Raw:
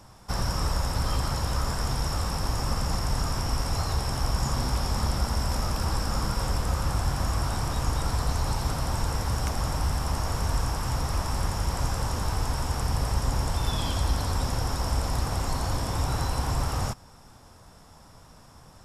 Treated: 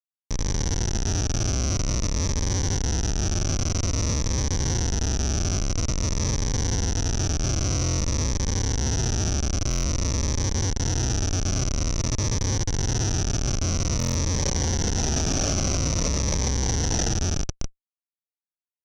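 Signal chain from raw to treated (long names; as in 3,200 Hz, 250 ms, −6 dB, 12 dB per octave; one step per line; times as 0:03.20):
low-pass filter sweep 110 Hz → 590 Hz, 0:13.64–0:14.18
four-comb reverb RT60 3.1 s, combs from 31 ms, DRR −5.5 dB
flanger 0.16 Hz, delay 7.1 ms, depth 4.1 ms, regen −50%
tuned comb filter 160 Hz, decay 1.2 s, mix 50%
on a send: tape delay 60 ms, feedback 36%, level −5 dB, low-pass 2,900 Hz
on the sum: comparator with hysteresis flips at −34 dBFS
low-pass with resonance 5,900 Hz, resonance Q 16
buffer that repeats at 0:07.83/0:09.69/0:13.98, samples 1,024, times 6
phaser whose notches keep moving one way falling 0.5 Hz
level +4.5 dB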